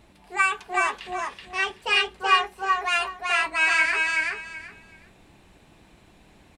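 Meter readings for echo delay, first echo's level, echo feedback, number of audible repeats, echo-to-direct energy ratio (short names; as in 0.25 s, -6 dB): 0.378 s, -3.0 dB, 20%, 3, -3.0 dB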